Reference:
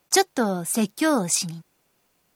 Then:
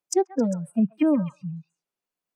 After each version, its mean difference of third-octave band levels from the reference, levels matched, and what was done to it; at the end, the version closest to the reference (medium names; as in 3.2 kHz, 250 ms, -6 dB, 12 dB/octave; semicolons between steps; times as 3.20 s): 15.0 dB: spectral noise reduction 28 dB; peaking EQ 62 Hz -13.5 dB 1.8 oct; low-pass that closes with the level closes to 400 Hz, closed at -22 dBFS; on a send: repeats whose band climbs or falls 133 ms, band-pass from 1.3 kHz, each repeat 1.4 oct, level -7 dB; on the sum: trim +5.5 dB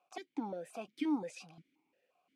9.0 dB: compression 2:1, threshold -29 dBFS, peak gain reduction 9.5 dB; peak limiter -21.5 dBFS, peak gain reduction 10.5 dB; stepped vowel filter 5.7 Hz; trim +3 dB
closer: second